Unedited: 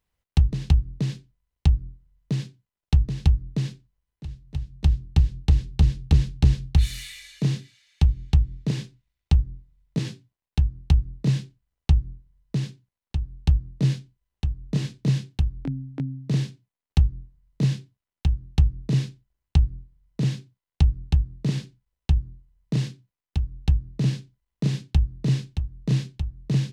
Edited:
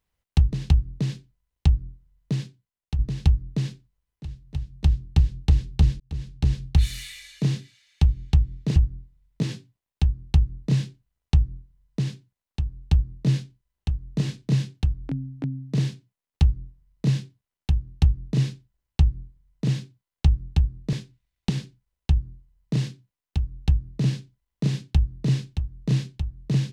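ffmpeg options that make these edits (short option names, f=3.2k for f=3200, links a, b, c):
-filter_complex "[0:a]asplit=6[a][b][c][d][e][f];[a]atrim=end=2.99,asetpts=PTS-STARTPTS,afade=t=out:st=2.33:d=0.66:silence=0.334965[g];[b]atrim=start=2.99:end=6,asetpts=PTS-STARTPTS,afade=t=in:d=0.004:c=hsin:silence=0.334965,afade=t=out:st=3.006:d=0.004:c=hsin[h];[c]atrim=start=6:end=8.762,asetpts=PTS-STARTPTS,afade=t=in:d=0.73[i];[d]atrim=start=9.318:end=21.492[j];[e]atrim=start=8.758:end=9.322[k];[f]atrim=start=21.488[l];[g][h][i]concat=n=3:v=0:a=1[m];[m][j]acrossfade=d=0.004:c1=hsin:c2=hsin[n];[n][k]acrossfade=d=0.004:c1=hsin:c2=hsin[o];[o][l]acrossfade=d=0.004:c1=hsin:c2=hsin"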